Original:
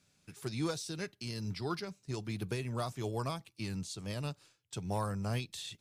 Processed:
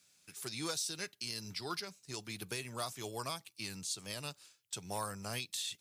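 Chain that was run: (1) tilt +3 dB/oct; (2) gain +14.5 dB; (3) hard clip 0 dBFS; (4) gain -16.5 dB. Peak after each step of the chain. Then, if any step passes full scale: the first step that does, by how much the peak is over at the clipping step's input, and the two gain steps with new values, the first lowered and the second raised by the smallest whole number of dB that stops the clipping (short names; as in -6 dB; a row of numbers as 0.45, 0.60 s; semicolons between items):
-20.5, -6.0, -6.0, -22.5 dBFS; no overload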